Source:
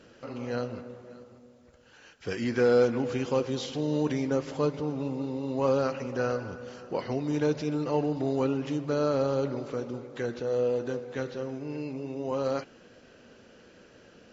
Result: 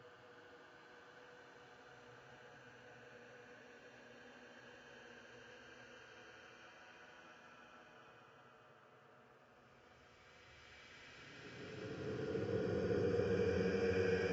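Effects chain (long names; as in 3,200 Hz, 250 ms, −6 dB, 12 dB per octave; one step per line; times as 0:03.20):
high-pass filter 70 Hz
high-shelf EQ 2,800 Hz −10 dB
on a send: feedback echo with a band-pass in the loop 382 ms, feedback 63%, band-pass 1,500 Hz, level −6 dB
on the sum: spring reverb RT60 3.6 s, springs 45/57 ms, chirp 55 ms, DRR 8.5 dB
extreme stretch with random phases 35×, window 0.10 s, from 0:01.91
level −5 dB
Ogg Vorbis 64 kbit/s 16,000 Hz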